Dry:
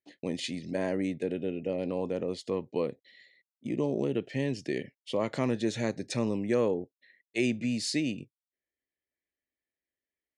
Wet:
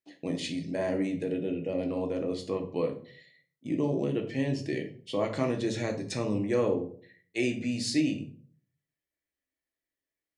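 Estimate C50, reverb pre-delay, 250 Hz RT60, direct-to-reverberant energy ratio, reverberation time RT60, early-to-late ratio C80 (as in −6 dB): 11.0 dB, 3 ms, 0.60 s, 2.5 dB, 0.50 s, 15.5 dB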